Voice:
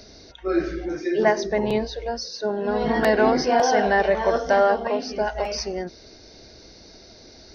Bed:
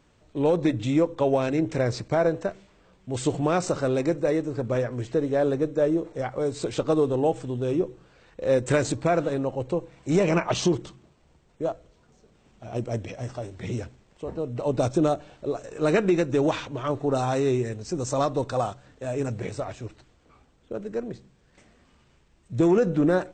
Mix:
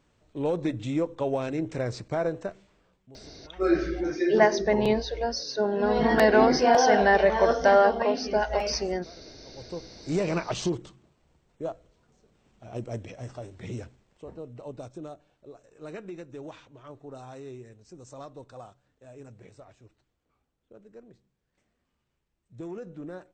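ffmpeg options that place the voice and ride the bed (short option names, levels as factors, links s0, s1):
-filter_complex "[0:a]adelay=3150,volume=0.944[s0];[1:a]volume=8.41,afade=t=out:st=2.74:d=0.44:silence=0.0630957,afade=t=in:st=9.44:d=0.56:silence=0.0630957,afade=t=out:st=13.84:d=1.03:silence=0.223872[s1];[s0][s1]amix=inputs=2:normalize=0"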